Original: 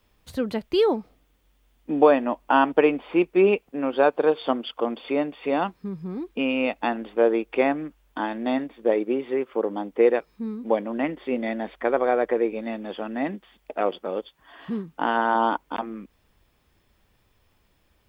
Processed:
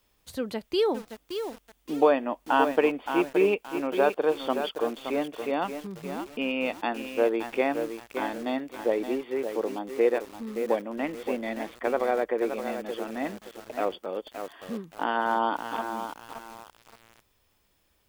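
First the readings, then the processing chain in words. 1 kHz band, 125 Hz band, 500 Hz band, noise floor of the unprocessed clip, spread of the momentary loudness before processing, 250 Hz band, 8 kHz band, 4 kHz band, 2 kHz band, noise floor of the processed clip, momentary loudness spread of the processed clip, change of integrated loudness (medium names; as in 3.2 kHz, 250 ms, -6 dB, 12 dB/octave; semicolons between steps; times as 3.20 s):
-3.5 dB, -6.5 dB, -3.5 dB, -66 dBFS, 13 LU, -5.0 dB, no reading, -1.0 dB, -3.0 dB, -69 dBFS, 13 LU, -4.0 dB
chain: tone controls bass -4 dB, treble +7 dB; bit-crushed delay 571 ms, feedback 35%, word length 6-bit, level -7.5 dB; trim -4 dB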